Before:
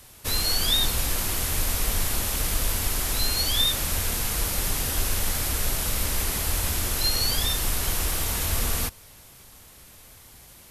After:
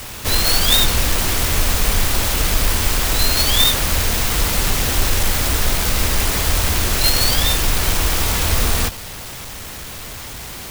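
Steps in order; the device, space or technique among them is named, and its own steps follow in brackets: early CD player with a faulty converter (zero-crossing step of -35.5 dBFS; clock jitter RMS 0.029 ms); gain +8 dB

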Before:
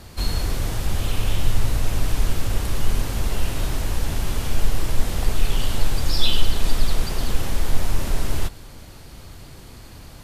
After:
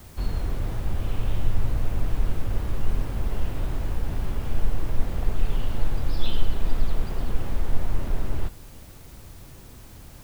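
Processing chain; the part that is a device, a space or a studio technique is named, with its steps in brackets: cassette deck with a dirty head (tape spacing loss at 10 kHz 32 dB; wow and flutter; white noise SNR 34 dB); gain -3 dB

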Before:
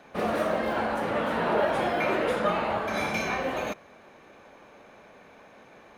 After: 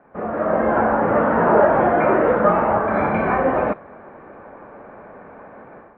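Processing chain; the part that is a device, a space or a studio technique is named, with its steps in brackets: action camera in a waterproof case (LPF 1600 Hz 24 dB/oct; AGC gain up to 12 dB; AAC 64 kbps 16000 Hz)

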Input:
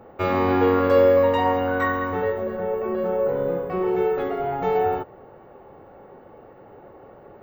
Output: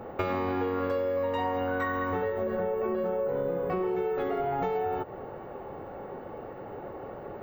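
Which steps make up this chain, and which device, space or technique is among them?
serial compression, peaks first (compressor, threshold -27 dBFS, peak gain reduction 14 dB; compressor 2.5:1, threshold -34 dBFS, peak gain reduction 6.5 dB); gain +5.5 dB

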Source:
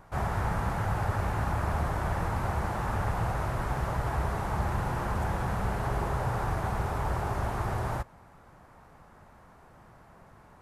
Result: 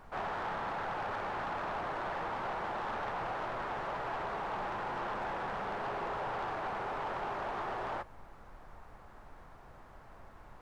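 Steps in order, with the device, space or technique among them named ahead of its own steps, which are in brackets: aircraft cabin announcement (BPF 350–3400 Hz; soft clip -31.5 dBFS, distortion -15 dB; brown noise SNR 15 dB)

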